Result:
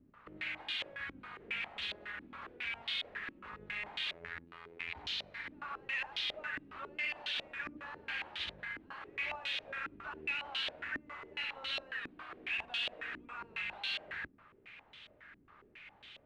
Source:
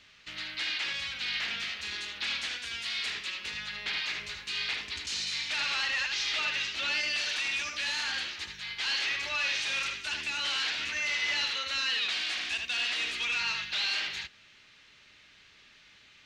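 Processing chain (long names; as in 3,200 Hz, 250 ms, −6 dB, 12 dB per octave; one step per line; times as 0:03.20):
each half-wave held at its own peak
brickwall limiter −33.5 dBFS, peak gain reduction 11.5 dB
0:04.13–0:04.95: phases set to zero 84.4 Hz
low-pass on a step sequencer 7.3 Hz 290–3,400 Hz
level −5.5 dB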